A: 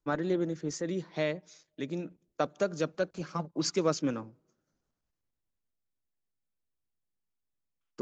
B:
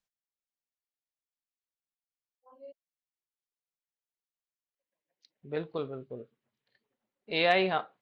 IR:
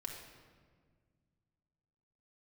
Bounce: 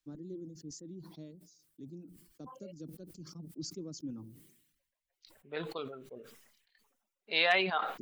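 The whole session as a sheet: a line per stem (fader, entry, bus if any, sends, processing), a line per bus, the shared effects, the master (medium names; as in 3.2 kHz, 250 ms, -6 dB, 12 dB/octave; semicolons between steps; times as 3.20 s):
-10.5 dB, 0.00 s, no send, FFT filter 320 Hz 0 dB, 580 Hz -17 dB, 2.1 kHz -28 dB, 4.8 kHz -8 dB
-3.5 dB, 0.00 s, no send, high-pass 150 Hz; tilt shelf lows -6.5 dB, about 760 Hz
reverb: none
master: reverb removal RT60 1 s; decay stretcher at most 61 dB/s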